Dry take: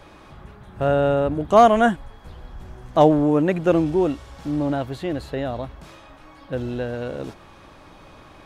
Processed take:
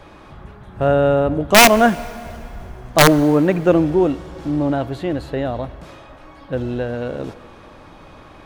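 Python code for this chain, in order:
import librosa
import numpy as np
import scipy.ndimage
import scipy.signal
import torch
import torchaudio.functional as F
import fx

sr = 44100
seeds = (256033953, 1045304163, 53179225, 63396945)

y = fx.high_shelf(x, sr, hz=3500.0, db=-5.0)
y = (np.mod(10.0 ** (6.0 / 20.0) * y + 1.0, 2.0) - 1.0) / 10.0 ** (6.0 / 20.0)
y = fx.rev_plate(y, sr, seeds[0], rt60_s=3.2, hf_ratio=0.7, predelay_ms=0, drr_db=17.5)
y = y * librosa.db_to_amplitude(4.0)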